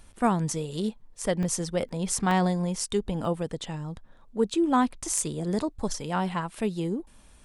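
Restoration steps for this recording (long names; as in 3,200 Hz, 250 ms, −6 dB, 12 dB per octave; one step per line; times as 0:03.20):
clipped peaks rebuilt −11.5 dBFS
repair the gap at 0:01.43/0:01.89/0:02.31/0:03.25/0:05.19, 1.6 ms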